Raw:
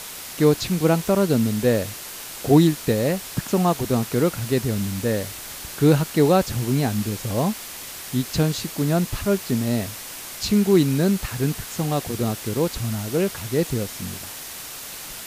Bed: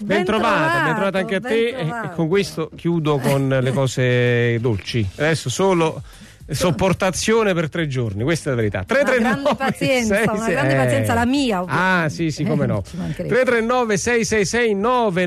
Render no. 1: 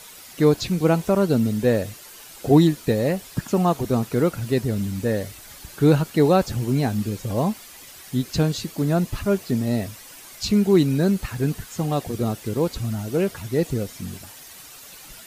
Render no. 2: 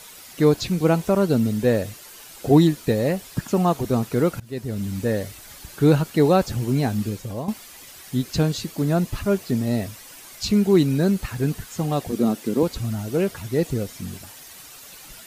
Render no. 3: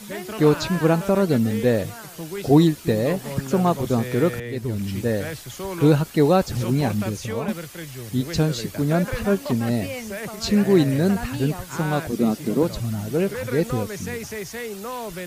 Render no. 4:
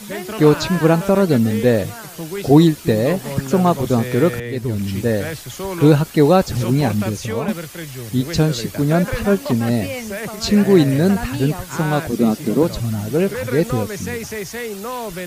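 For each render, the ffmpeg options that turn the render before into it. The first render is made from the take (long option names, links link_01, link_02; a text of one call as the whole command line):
ffmpeg -i in.wav -af "afftdn=noise_reduction=10:noise_floor=-36" out.wav
ffmpeg -i in.wav -filter_complex "[0:a]asettb=1/sr,asplit=3[link_01][link_02][link_03];[link_01]atrim=end=12.124[link_04];[link_02]atrim=start=12.12:end=12.63,asetpts=PTS-STARTPTS,afade=type=in:duration=0.004:curve=qsin,afade=type=out:start_time=0.506:duration=0.004:curve=qsin,highpass=frequency=230:width_type=q:width=2.2[link_05];[link_03]atrim=start=12.626[link_06];[link_04][link_05]acrossfade=duration=0.004:curve1=hsin:curve2=qsin[link_07];[link_07][link_06]acrossfade=duration=0.004:curve1=qsin:curve2=hsin,asplit=3[link_08][link_09][link_10];[link_08]atrim=end=4.4,asetpts=PTS-STARTPTS,afade=type=out:start_time=4.396:duration=0.004:curve=hsin:silence=0.0891251[link_11];[link_09]atrim=start=4.4:end=7.48,asetpts=PTS-STARTPTS,afade=type=in:duration=0.54:silence=0.0891251,afade=type=out:start_time=2.68:duration=0.4:silence=0.266073[link_12];[link_10]atrim=start=7.48,asetpts=PTS-STARTPTS,afade=type=in:duration=0.004:curve=hsin:silence=0.266073[link_13];[link_11][link_12][link_13]concat=n=3:v=0:a=1" out.wav
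ffmpeg -i in.wav -i bed.wav -filter_complex "[1:a]volume=-14.5dB[link_01];[0:a][link_01]amix=inputs=2:normalize=0" out.wav
ffmpeg -i in.wav -af "volume=4.5dB,alimiter=limit=-1dB:level=0:latency=1" out.wav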